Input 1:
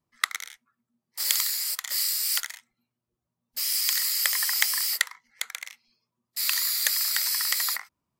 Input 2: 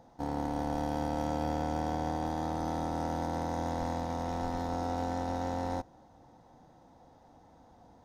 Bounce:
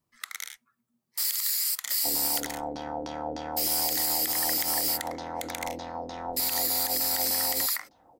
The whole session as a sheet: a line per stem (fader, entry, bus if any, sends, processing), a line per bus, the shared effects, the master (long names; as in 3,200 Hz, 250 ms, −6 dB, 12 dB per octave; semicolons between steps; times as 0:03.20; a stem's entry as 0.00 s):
+0.5 dB, 0.00 s, no send, high-shelf EQ 7,800 Hz +6.5 dB; downward compressor 2.5 to 1, threshold −25 dBFS, peak gain reduction 7.5 dB
−2.5 dB, 1.85 s, no send, bass and treble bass −9 dB, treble +14 dB; auto-filter low-pass saw down 3.3 Hz 320–5,000 Hz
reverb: not used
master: brickwall limiter −16 dBFS, peak gain reduction 10.5 dB